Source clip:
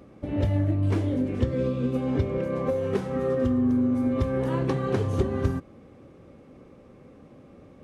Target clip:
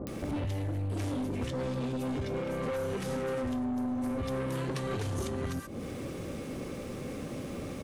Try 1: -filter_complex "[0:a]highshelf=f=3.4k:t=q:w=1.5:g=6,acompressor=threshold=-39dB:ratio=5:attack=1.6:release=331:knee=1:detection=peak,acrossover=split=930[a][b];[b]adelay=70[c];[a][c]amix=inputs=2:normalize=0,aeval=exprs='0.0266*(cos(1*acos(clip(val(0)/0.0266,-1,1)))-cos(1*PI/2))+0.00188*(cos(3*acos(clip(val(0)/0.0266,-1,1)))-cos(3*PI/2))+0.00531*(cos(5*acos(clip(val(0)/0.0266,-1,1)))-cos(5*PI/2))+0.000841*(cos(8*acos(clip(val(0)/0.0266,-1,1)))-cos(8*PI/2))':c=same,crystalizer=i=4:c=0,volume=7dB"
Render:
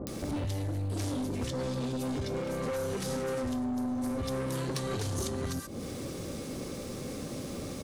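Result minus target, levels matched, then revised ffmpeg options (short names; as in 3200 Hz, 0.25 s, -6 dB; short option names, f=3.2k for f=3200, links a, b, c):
8000 Hz band +6.5 dB
-filter_complex "[0:a]acompressor=threshold=-39dB:ratio=5:attack=1.6:release=331:knee=1:detection=peak,acrossover=split=930[a][b];[b]adelay=70[c];[a][c]amix=inputs=2:normalize=0,aeval=exprs='0.0266*(cos(1*acos(clip(val(0)/0.0266,-1,1)))-cos(1*PI/2))+0.00188*(cos(3*acos(clip(val(0)/0.0266,-1,1)))-cos(3*PI/2))+0.00531*(cos(5*acos(clip(val(0)/0.0266,-1,1)))-cos(5*PI/2))+0.000841*(cos(8*acos(clip(val(0)/0.0266,-1,1)))-cos(8*PI/2))':c=same,crystalizer=i=4:c=0,volume=7dB"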